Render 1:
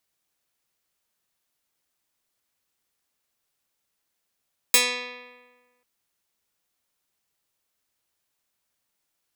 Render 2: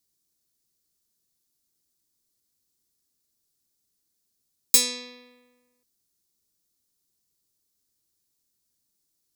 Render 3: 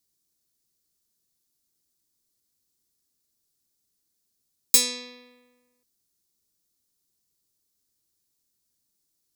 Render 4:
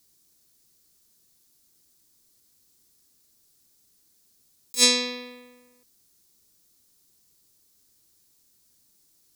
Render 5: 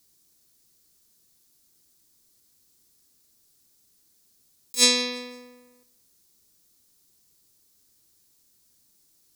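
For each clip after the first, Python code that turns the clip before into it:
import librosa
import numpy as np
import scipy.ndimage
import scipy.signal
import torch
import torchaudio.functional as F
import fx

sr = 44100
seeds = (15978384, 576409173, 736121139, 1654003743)

y1 = fx.band_shelf(x, sr, hz=1300.0, db=-14.0, octaves=2.9)
y1 = F.gain(torch.from_numpy(y1), 3.0).numpy()
y2 = y1
y3 = fx.over_compress(y2, sr, threshold_db=-26.0, ratio=-0.5)
y3 = F.gain(torch.from_numpy(y3), 7.0).numpy()
y4 = fx.echo_feedback(y3, sr, ms=170, feedback_pct=42, wet_db=-24)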